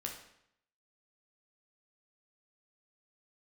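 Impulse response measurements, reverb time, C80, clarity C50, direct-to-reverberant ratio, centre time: 0.75 s, 9.5 dB, 6.0 dB, 0.0 dB, 28 ms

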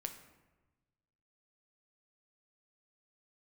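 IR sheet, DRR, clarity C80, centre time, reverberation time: 5.5 dB, 11.5 dB, 15 ms, 1.2 s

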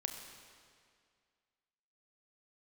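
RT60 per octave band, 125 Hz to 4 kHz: 2.1, 2.1, 2.1, 2.1, 2.0, 1.9 seconds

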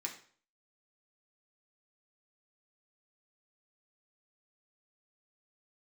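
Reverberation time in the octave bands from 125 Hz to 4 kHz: 0.50, 0.45, 0.50, 0.45, 0.45, 0.45 seconds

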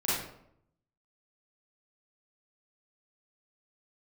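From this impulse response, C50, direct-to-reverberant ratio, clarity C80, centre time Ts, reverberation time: −2.0 dB, −10.0 dB, 3.5 dB, 70 ms, 0.70 s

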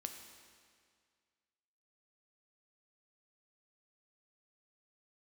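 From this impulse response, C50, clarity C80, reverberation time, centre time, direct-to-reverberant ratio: 6.5 dB, 7.5 dB, 2.0 s, 38 ms, 5.0 dB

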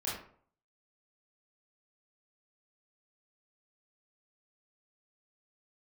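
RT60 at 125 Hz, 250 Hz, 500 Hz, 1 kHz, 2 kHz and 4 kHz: 0.60, 0.50, 0.55, 0.50, 0.40, 0.30 seconds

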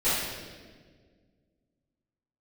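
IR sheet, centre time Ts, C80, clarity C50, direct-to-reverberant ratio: 100 ms, 1.5 dB, −2.0 dB, −16.0 dB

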